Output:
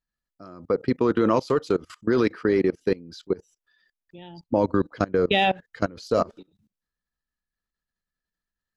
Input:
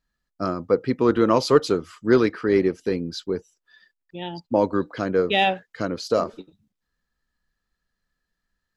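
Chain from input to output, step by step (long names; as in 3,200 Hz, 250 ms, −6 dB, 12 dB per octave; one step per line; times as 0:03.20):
0:04.18–0:06.31: low-shelf EQ 110 Hz +11 dB
output level in coarse steps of 23 dB
level +3.5 dB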